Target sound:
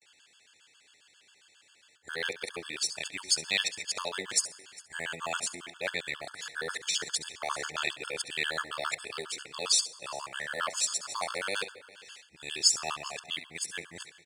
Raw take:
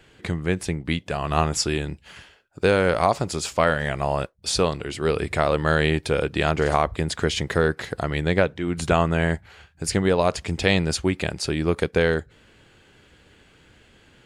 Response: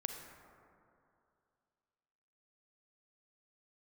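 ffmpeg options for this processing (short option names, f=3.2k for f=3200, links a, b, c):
-filter_complex "[0:a]areverse,lowpass=f=8.8k:w=0.5412,lowpass=f=8.8k:w=1.3066,aderivative,aecho=1:1:405:0.0794,asplit=2[a][b];[1:a]atrim=start_sample=2205,afade=t=out:st=0.43:d=0.01,atrim=end_sample=19404,adelay=68[c];[b][c]afir=irnorm=-1:irlink=0,volume=-12dB[d];[a][d]amix=inputs=2:normalize=0,acrusher=bits=8:mode=log:mix=0:aa=0.000001,afftfilt=real='re*gt(sin(2*PI*7.4*pts/sr)*(1-2*mod(floor(b*sr/1024/880),2)),0)':imag='im*gt(sin(2*PI*7.4*pts/sr)*(1-2*mod(floor(b*sr/1024/880),2)),0)':win_size=1024:overlap=0.75,volume=7dB"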